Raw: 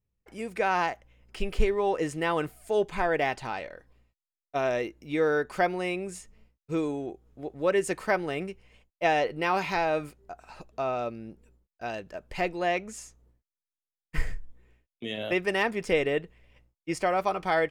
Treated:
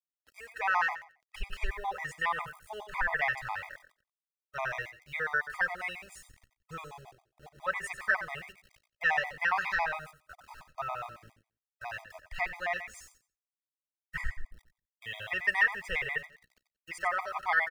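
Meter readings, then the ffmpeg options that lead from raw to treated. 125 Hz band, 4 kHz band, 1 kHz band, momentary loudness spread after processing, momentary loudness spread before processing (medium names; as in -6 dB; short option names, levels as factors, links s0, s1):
-11.0 dB, -5.5 dB, -4.5 dB, 19 LU, 16 LU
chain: -filter_complex "[0:a]equalizer=f=1800:w=2.3:g=9.5,acrossover=split=120[s0][s1];[s0]dynaudnorm=f=120:g=21:m=2.11[s2];[s1]highpass=f=1000:t=q:w=1.9[s3];[s2][s3]amix=inputs=2:normalize=0,aeval=exprs='val(0)*gte(abs(val(0)),0.00501)':c=same,asplit=2[s4][s5];[s5]aecho=0:1:91|182|273:0.282|0.062|0.0136[s6];[s4][s6]amix=inputs=2:normalize=0,afftfilt=real='re*gt(sin(2*PI*7.3*pts/sr)*(1-2*mod(floor(b*sr/1024/640),2)),0)':imag='im*gt(sin(2*PI*7.3*pts/sr)*(1-2*mod(floor(b*sr/1024/640),2)),0)':win_size=1024:overlap=0.75,volume=0.596"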